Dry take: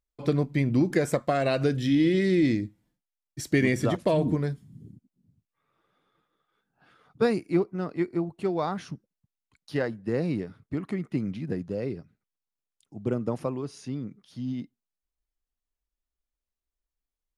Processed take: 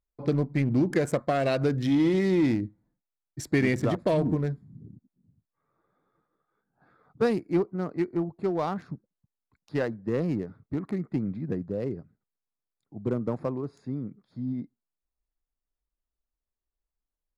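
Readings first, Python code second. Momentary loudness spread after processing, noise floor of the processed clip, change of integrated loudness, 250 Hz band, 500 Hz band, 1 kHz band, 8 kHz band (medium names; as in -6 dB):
13 LU, under -85 dBFS, -0.5 dB, -0.5 dB, -0.5 dB, -0.5 dB, no reading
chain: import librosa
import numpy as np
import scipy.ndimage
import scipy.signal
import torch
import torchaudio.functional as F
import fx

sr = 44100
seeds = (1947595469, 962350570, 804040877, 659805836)

p1 = fx.wiener(x, sr, points=15)
p2 = np.clip(p1, -10.0 ** (-23.5 / 20.0), 10.0 ** (-23.5 / 20.0))
p3 = p1 + F.gain(torch.from_numpy(p2), -6.0).numpy()
y = F.gain(torch.from_numpy(p3), -3.0).numpy()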